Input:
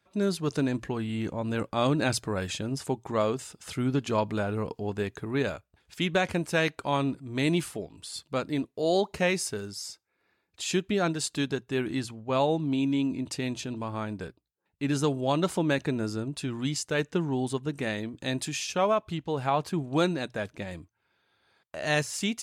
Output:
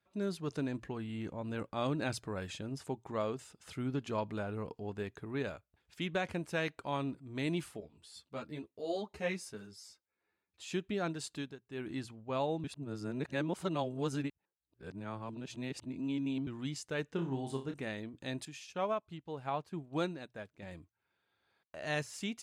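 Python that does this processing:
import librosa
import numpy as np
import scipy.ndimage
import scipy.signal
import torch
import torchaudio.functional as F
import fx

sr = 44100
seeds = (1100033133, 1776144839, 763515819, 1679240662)

y = fx.ensemble(x, sr, at=(7.8, 10.72))
y = fx.room_flutter(y, sr, wall_m=5.1, rt60_s=0.3, at=(17.13, 17.74))
y = fx.upward_expand(y, sr, threshold_db=-44.0, expansion=1.5, at=(18.45, 20.63))
y = fx.edit(y, sr, fx.fade_down_up(start_s=11.32, length_s=0.58, db=-16.0, fade_s=0.28),
    fx.reverse_span(start_s=12.64, length_s=3.83), tone=tone)
y = fx.bass_treble(y, sr, bass_db=0, treble_db=-4)
y = y * librosa.db_to_amplitude(-9.0)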